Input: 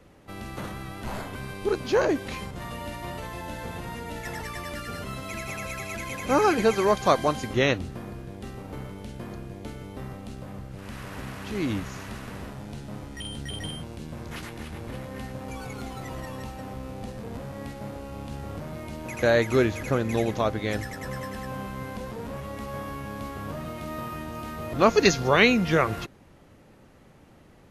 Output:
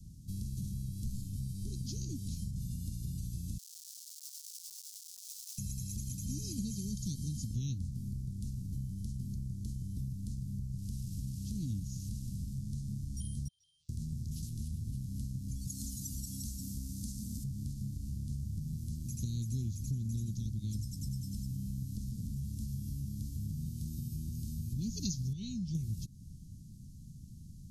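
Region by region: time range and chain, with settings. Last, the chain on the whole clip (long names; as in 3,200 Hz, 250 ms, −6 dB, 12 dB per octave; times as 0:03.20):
0:03.58–0:05.58: comparator with hysteresis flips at −33.5 dBFS + linear-phase brick-wall high-pass 1,000 Hz
0:13.48–0:13.89: inverse Chebyshev high-pass filter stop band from 740 Hz, stop band 50 dB + downward compressor 5 to 1, threshold −43 dBFS + head-to-tape spacing loss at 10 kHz 34 dB
0:15.67–0:17.44: high-pass filter 44 Hz + bass and treble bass −3 dB, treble +9 dB + comb filter 3.9 ms, depth 49%
0:25.33–0:25.75: low-pass filter 5,500 Hz + bass and treble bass +1 dB, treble +4 dB + tuned comb filter 380 Hz, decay 0.17 s, mix 70%
whole clip: inverse Chebyshev band-stop filter 580–1,800 Hz, stop band 70 dB; downward compressor 3 to 1, threshold −45 dBFS; high-shelf EQ 7,500 Hz −5.5 dB; level +8 dB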